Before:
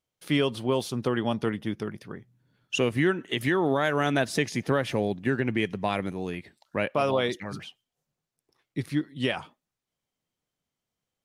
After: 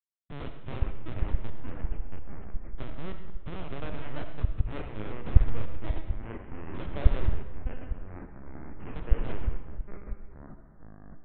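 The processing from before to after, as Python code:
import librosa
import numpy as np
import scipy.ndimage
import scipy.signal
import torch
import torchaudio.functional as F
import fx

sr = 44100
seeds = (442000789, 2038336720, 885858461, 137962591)

y = fx.tracing_dist(x, sr, depth_ms=0.23)
y = scipy.signal.sosfilt(scipy.signal.butter(2, 1300.0, 'lowpass', fs=sr, output='sos'), y)
y = fx.low_shelf(y, sr, hz=330.0, db=-10.0)
y = fx.schmitt(y, sr, flips_db=-26.0)
y = fx.lpc_vocoder(y, sr, seeds[0], excitation='pitch_kept', order=10)
y = fx.rev_freeverb(y, sr, rt60_s=0.94, hf_ratio=0.9, predelay_ms=25, drr_db=6.5)
y = fx.echo_pitch(y, sr, ms=303, semitones=-4, count=3, db_per_echo=-3.0)
y = y * librosa.db_to_amplitude(-2.5)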